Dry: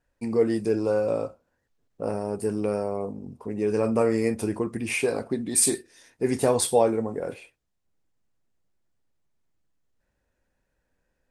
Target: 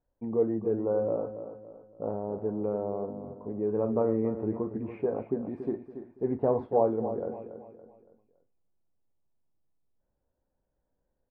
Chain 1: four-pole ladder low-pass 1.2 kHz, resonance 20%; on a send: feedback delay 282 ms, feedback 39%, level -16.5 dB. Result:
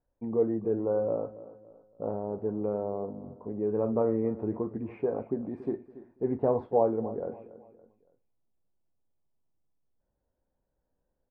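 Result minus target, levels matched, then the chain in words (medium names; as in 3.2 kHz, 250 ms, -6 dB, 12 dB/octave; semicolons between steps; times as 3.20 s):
echo-to-direct -6 dB
four-pole ladder low-pass 1.2 kHz, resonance 20%; on a send: feedback delay 282 ms, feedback 39%, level -10.5 dB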